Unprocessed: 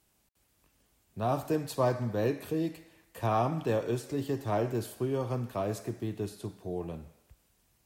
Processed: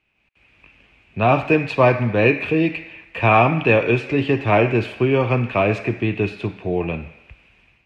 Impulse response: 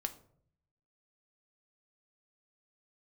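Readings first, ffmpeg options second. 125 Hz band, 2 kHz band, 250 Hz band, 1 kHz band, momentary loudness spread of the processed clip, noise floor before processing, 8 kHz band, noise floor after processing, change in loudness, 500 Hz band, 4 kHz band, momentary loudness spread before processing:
+12.5 dB, +23.5 dB, +13.0 dB, +13.5 dB, 9 LU, −71 dBFS, can't be measured, −62 dBFS, +14.0 dB, +13.0 dB, +14.0 dB, 9 LU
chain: -af "dynaudnorm=framelen=140:gausssize=5:maxgain=14.5dB,lowpass=frequency=2500:width_type=q:width=8.6,volume=-1dB"

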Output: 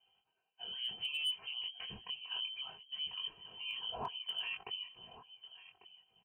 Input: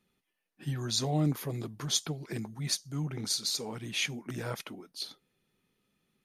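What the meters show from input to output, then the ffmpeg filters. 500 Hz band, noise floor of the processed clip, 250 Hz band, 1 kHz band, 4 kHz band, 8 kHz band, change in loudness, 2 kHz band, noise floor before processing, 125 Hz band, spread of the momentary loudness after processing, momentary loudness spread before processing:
−15.5 dB, −83 dBFS, −26.5 dB, −5.0 dB, −1.0 dB, below −25 dB, −6.5 dB, −4.0 dB, −83 dBFS, −29.0 dB, 18 LU, 11 LU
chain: -filter_complex "[0:a]superequalizer=10b=0.251:11b=0.398,acompressor=threshold=-46dB:ratio=2,asplit=2[link_01][link_02];[link_02]aecho=0:1:1146:0.168[link_03];[link_01][link_03]amix=inputs=2:normalize=0,acrossover=split=420[link_04][link_05];[link_04]aeval=exprs='val(0)*(1-0.5/2+0.5/2*cos(2*PI*9.6*n/s))':channel_layout=same[link_06];[link_05]aeval=exprs='val(0)*(1-0.5/2-0.5/2*cos(2*PI*9.6*n/s))':channel_layout=same[link_07];[link_06][link_07]amix=inputs=2:normalize=0,highpass=80,bandreject=frequency=2100:width=20,aecho=1:1:3.5:0.76,flanger=delay=19.5:depth=4.9:speed=0.63,lowpass=frequency=2800:width_type=q:width=0.5098,lowpass=frequency=2800:width_type=q:width=0.6013,lowpass=frequency=2800:width_type=q:width=0.9,lowpass=frequency=2800:width_type=q:width=2.563,afreqshift=-3300,asoftclip=type=hard:threshold=-39dB,volume=8dB"

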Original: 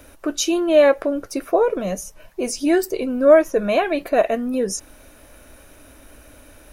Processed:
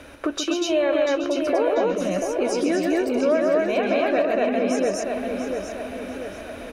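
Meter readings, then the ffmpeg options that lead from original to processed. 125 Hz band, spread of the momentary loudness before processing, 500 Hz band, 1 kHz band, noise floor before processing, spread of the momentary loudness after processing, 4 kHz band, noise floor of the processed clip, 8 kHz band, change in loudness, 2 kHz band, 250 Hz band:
can't be measured, 14 LU, −3.0 dB, −2.0 dB, −48 dBFS, 12 LU, −0.5 dB, −37 dBFS, −5.5 dB, −3.5 dB, −1.0 dB, −1.0 dB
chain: -filter_complex "[0:a]highpass=frequency=98:poles=1,equalizer=frequency=3000:width_type=o:width=1.7:gain=4.5,asplit=2[link_01][link_02];[link_02]aecho=0:1:134.1|239.1:0.562|1[link_03];[link_01][link_03]amix=inputs=2:normalize=0,acompressor=threshold=-28dB:ratio=3,aemphasis=mode=reproduction:type=50fm,asplit=2[link_04][link_05];[link_05]adelay=690,lowpass=frequency=4300:poles=1,volume=-5.5dB,asplit=2[link_06][link_07];[link_07]adelay=690,lowpass=frequency=4300:poles=1,volume=0.52,asplit=2[link_08][link_09];[link_09]adelay=690,lowpass=frequency=4300:poles=1,volume=0.52,asplit=2[link_10][link_11];[link_11]adelay=690,lowpass=frequency=4300:poles=1,volume=0.52,asplit=2[link_12][link_13];[link_13]adelay=690,lowpass=frequency=4300:poles=1,volume=0.52,asplit=2[link_14][link_15];[link_15]adelay=690,lowpass=frequency=4300:poles=1,volume=0.52,asplit=2[link_16][link_17];[link_17]adelay=690,lowpass=frequency=4300:poles=1,volume=0.52[link_18];[link_06][link_08][link_10][link_12][link_14][link_16][link_18]amix=inputs=7:normalize=0[link_19];[link_04][link_19]amix=inputs=2:normalize=0,volume=4.5dB"

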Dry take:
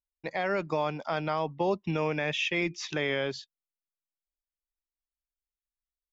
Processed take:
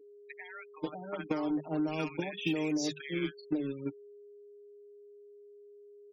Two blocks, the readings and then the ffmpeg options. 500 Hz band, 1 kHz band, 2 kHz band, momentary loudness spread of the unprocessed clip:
−7.5 dB, −10.5 dB, −9.5 dB, 4 LU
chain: -filter_complex "[0:a]acrossover=split=140|350[link_01][link_02][link_03];[link_01]acompressor=threshold=-50dB:ratio=4[link_04];[link_02]acompressor=threshold=-48dB:ratio=4[link_05];[link_03]acompressor=threshold=-35dB:ratio=4[link_06];[link_04][link_05][link_06]amix=inputs=3:normalize=0,acrossover=split=1000|4500[link_07][link_08][link_09];[link_08]adelay=40[link_10];[link_07]adelay=580[link_11];[link_11][link_10][link_09]amix=inputs=3:normalize=0,acrusher=bits=6:mix=0:aa=0.5,aeval=exprs='val(0)+0.00708*sin(2*PI*410*n/s)':channel_layout=same,equalizer=frequency=300:width_type=o:width=0.25:gain=13,bandreject=frequency=50:width_type=h:width=6,bandreject=frequency=100:width_type=h:width=6,bandreject=frequency=150:width_type=h:width=6,bandreject=frequency=200:width_type=h:width=6,aecho=1:1:6.5:0.87,agate=range=-9dB:threshold=-32dB:ratio=16:detection=peak,afftfilt=real='re*gte(hypot(re,im),0.00794)':imag='im*gte(hypot(re,im),0.00794)':win_size=1024:overlap=0.75,acompressor=threshold=-32dB:ratio=6,adynamicequalizer=threshold=0.00355:dfrequency=200:dqfactor=0.8:tfrequency=200:tqfactor=0.8:attack=5:release=100:ratio=0.375:range=2.5:mode=boostabove:tftype=bell,crystalizer=i=3:c=0"

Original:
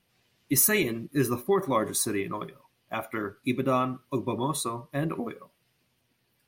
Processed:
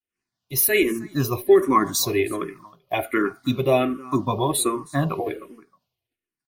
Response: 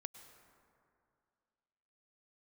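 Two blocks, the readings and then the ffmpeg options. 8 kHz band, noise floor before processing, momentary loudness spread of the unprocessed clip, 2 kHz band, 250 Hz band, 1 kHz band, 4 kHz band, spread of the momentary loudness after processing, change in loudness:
+2.5 dB, −73 dBFS, 14 LU, +5.5 dB, +5.5 dB, +6.5 dB, +7.0 dB, 11 LU, +6.0 dB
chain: -filter_complex "[0:a]agate=range=-33dB:threshold=-59dB:ratio=3:detection=peak,aecho=1:1:2.8:0.35,dynaudnorm=framelen=270:gausssize=5:maxgain=11dB,asplit=2[link_01][link_02];[link_02]aecho=0:1:315:0.0794[link_03];[link_01][link_03]amix=inputs=2:normalize=0,asplit=2[link_04][link_05];[link_05]afreqshift=-1.3[link_06];[link_04][link_06]amix=inputs=2:normalize=1"

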